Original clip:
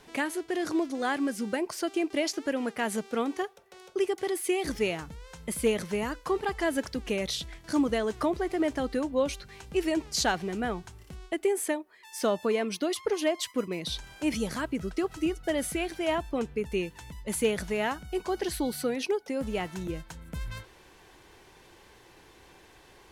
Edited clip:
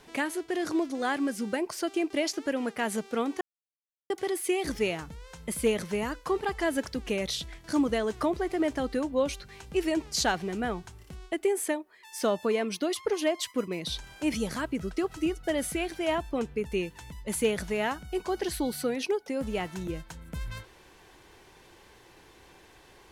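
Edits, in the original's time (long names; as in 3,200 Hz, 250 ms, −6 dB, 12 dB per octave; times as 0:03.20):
0:03.41–0:04.10: silence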